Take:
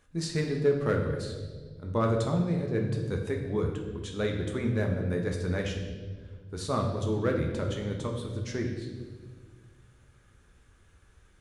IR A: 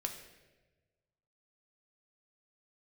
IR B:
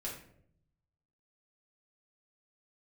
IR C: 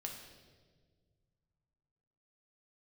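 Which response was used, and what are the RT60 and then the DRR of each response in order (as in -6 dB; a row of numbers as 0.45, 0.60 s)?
C; 1.2, 0.65, 1.6 s; 3.0, -5.0, 1.0 dB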